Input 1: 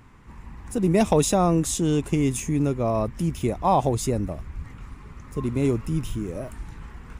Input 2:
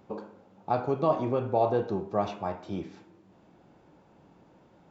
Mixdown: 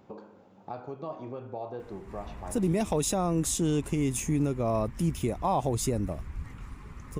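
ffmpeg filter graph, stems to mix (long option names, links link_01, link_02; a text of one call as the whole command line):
ffmpeg -i stem1.wav -i stem2.wav -filter_complex "[0:a]highshelf=frequency=8800:gain=3.5,adelay=1800,volume=-2.5dB[link_01];[1:a]acompressor=threshold=-45dB:ratio=2,volume=0dB[link_02];[link_01][link_02]amix=inputs=2:normalize=0,alimiter=limit=-18dB:level=0:latency=1:release=158" out.wav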